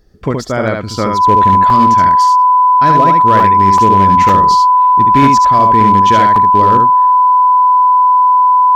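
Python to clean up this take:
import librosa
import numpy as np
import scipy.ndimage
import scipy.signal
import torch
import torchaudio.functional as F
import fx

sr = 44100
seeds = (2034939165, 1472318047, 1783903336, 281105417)

y = fx.fix_declip(x, sr, threshold_db=-2.0)
y = fx.notch(y, sr, hz=1000.0, q=30.0)
y = fx.fix_interpolate(y, sr, at_s=(1.7, 3.4, 3.78, 4.29, 6.36), length_ms=2.9)
y = fx.fix_echo_inverse(y, sr, delay_ms=72, level_db=-4.0)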